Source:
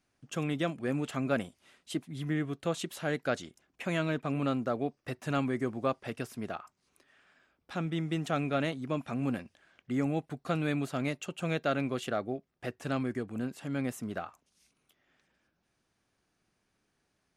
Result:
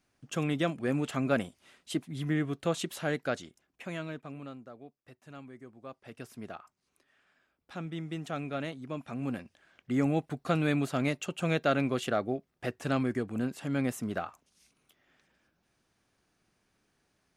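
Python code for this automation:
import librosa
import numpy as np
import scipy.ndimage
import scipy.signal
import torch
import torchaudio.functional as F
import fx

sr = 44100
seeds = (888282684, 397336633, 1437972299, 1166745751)

y = fx.gain(x, sr, db=fx.line((2.96, 2.0), (4.16, -8.5), (4.71, -17.0), (5.8, -17.0), (6.3, -5.0), (8.92, -5.0), (10.05, 3.0)))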